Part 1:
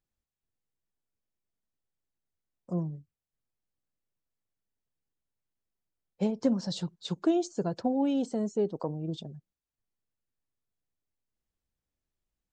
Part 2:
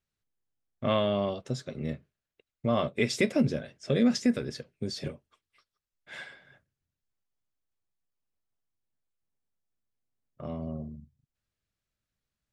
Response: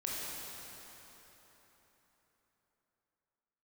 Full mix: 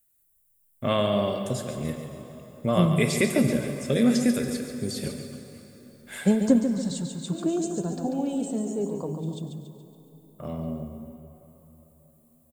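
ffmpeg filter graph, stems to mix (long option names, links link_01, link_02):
-filter_complex "[0:a]lowshelf=frequency=210:gain=10.5,adelay=50,volume=2.5dB,asplit=3[link_01][link_02][link_03];[link_02]volume=-17dB[link_04];[link_03]volume=-6.5dB[link_05];[1:a]acrossover=split=5400[link_06][link_07];[link_07]acompressor=threshold=-54dB:ratio=4:attack=1:release=60[link_08];[link_06][link_08]amix=inputs=2:normalize=0,volume=0dB,asplit=4[link_09][link_10][link_11][link_12];[link_10]volume=-8dB[link_13];[link_11]volume=-7.5dB[link_14];[link_12]apad=whole_len=554395[link_15];[link_01][link_15]sidechaingate=range=-33dB:threshold=-59dB:ratio=16:detection=peak[link_16];[2:a]atrim=start_sample=2205[link_17];[link_04][link_13]amix=inputs=2:normalize=0[link_18];[link_18][link_17]afir=irnorm=-1:irlink=0[link_19];[link_05][link_14]amix=inputs=2:normalize=0,aecho=0:1:141|282|423|564|705|846|987:1|0.48|0.23|0.111|0.0531|0.0255|0.0122[link_20];[link_16][link_09][link_19][link_20]amix=inputs=4:normalize=0,highshelf=frequency=5300:gain=4,aexciter=amount=8.6:drive=6.9:freq=7800"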